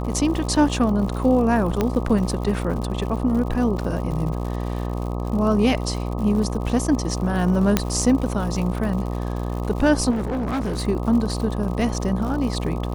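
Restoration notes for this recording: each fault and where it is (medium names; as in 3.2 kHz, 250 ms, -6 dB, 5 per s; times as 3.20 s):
buzz 60 Hz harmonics 21 -26 dBFS
crackle 120 per s -30 dBFS
1.81 s: pop -8 dBFS
7.77 s: pop -2 dBFS
10.10–10.88 s: clipped -21 dBFS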